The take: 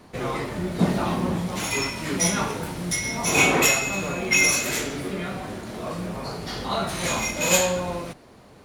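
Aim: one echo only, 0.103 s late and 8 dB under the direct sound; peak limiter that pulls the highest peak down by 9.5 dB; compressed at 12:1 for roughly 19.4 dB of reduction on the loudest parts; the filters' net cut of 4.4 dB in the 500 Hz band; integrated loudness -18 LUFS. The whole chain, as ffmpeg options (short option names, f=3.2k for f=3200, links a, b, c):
-af "equalizer=f=500:t=o:g=-5.5,acompressor=threshold=-35dB:ratio=12,alimiter=level_in=10dB:limit=-24dB:level=0:latency=1,volume=-10dB,aecho=1:1:103:0.398,volume=23.5dB"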